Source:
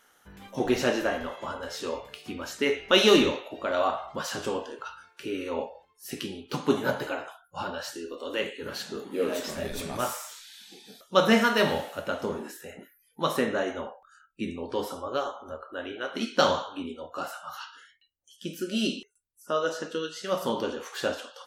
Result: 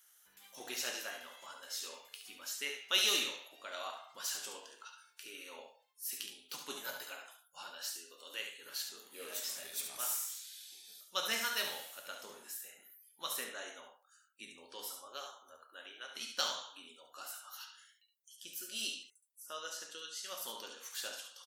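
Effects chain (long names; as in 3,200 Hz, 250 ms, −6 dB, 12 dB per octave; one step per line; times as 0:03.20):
first difference
single-tap delay 70 ms −7.5 dB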